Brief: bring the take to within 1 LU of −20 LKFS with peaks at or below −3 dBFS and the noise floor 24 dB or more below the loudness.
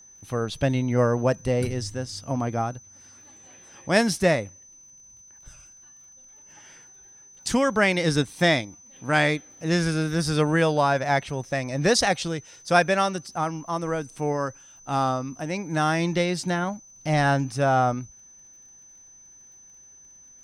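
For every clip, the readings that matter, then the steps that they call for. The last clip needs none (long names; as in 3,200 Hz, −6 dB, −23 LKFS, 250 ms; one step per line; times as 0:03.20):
crackle rate 37 per second; interfering tone 6,100 Hz; level of the tone −48 dBFS; integrated loudness −24.5 LKFS; sample peak −5.0 dBFS; target loudness −20.0 LKFS
→ click removal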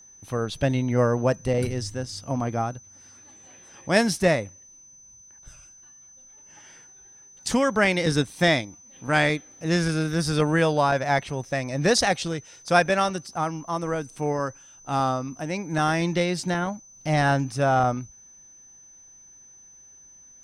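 crackle rate 0.29 per second; interfering tone 6,100 Hz; level of the tone −48 dBFS
→ notch filter 6,100 Hz, Q 30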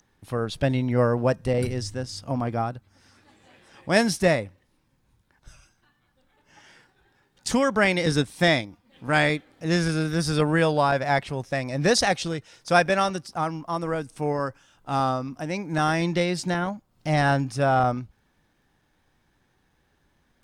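interfering tone none found; integrated loudness −24.5 LKFS; sample peak −5.0 dBFS; target loudness −20.0 LKFS
→ level +4.5 dB
brickwall limiter −3 dBFS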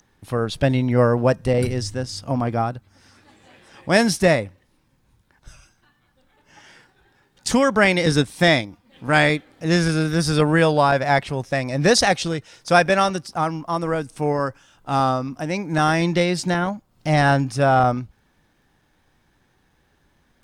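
integrated loudness −20.0 LKFS; sample peak −3.0 dBFS; background noise floor −64 dBFS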